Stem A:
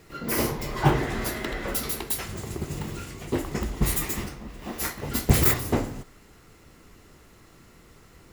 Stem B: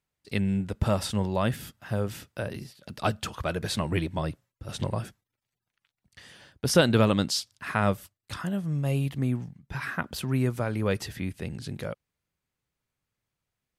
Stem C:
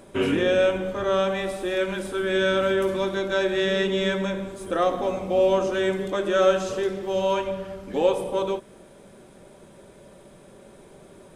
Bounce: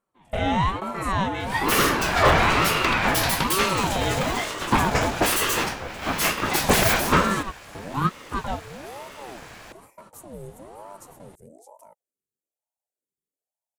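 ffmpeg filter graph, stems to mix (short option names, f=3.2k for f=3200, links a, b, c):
-filter_complex "[0:a]asplit=2[a][b];[b]highpass=f=720:p=1,volume=25dB,asoftclip=type=tanh:threshold=-3.5dB[c];[a][c]amix=inputs=2:normalize=0,lowpass=f=4k:p=1,volume=-6dB,adelay=1400,volume=-0.5dB[d];[1:a]firequalizer=gain_entry='entry(230,0);entry(440,-19);entry(1100,-13);entry(3100,-28);entry(7000,9)':delay=0.05:min_phase=1,volume=-10dB,asplit=2[e][f];[2:a]volume=1dB[g];[f]apad=whole_len=505077[h];[g][h]sidechaingate=range=-32dB:threshold=-50dB:ratio=16:detection=peak[i];[d][e][i]amix=inputs=3:normalize=0,aeval=exprs='val(0)*sin(2*PI*530*n/s+530*0.5/1.1*sin(2*PI*1.1*n/s))':c=same"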